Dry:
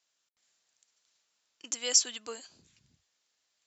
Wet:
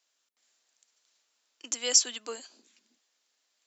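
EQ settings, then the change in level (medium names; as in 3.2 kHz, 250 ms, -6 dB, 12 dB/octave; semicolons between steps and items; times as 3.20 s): elliptic high-pass 230 Hz, stop band 40 dB; +3.0 dB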